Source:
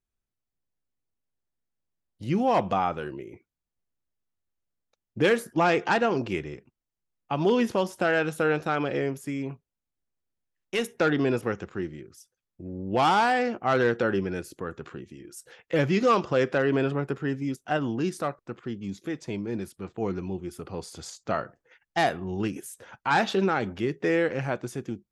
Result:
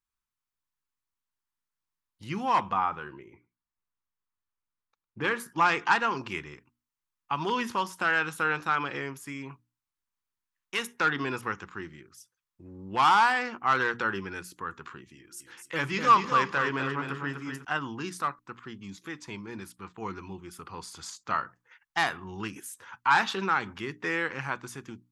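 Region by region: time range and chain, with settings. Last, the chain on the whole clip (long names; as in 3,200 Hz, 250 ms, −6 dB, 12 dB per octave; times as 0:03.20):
0:02.69–0:05.40: low-pass filter 1,800 Hz 6 dB per octave + single-tap delay 105 ms −23.5 dB
0:15.15–0:17.65: mains-hum notches 50/100/150/200/250/300/350/400 Hz + repeating echo 250 ms, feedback 29%, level −6 dB
whole clip: low shelf with overshoot 800 Hz −7.5 dB, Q 3; mains-hum notches 60/120/180/240/300 Hz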